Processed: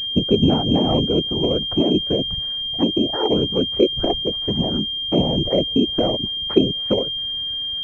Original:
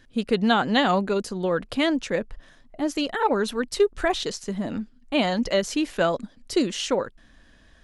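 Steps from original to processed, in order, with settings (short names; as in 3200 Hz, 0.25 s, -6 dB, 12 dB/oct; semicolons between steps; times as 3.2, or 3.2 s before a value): whisperiser; treble ducked by the level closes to 460 Hz, closed at -21.5 dBFS; pulse-width modulation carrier 3200 Hz; gain +6.5 dB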